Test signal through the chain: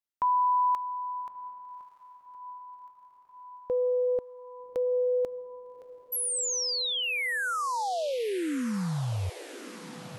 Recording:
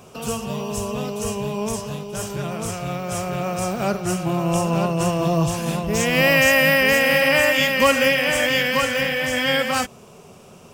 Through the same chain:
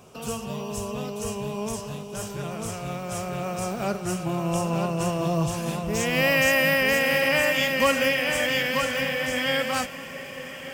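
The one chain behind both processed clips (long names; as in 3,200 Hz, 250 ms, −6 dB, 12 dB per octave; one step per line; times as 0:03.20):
feedback delay with all-pass diffusion 1,225 ms, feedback 62%, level −15 dB
level −5 dB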